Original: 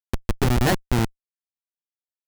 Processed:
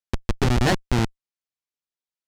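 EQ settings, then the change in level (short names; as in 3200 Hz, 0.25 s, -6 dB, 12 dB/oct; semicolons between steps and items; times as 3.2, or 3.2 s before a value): air absorption 90 m; high shelf 3900 Hz +8 dB; bell 14000 Hz +7.5 dB 0.38 oct; 0.0 dB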